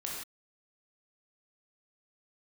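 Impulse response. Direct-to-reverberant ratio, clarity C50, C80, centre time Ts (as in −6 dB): −3.5 dB, 0.5 dB, 3.0 dB, 58 ms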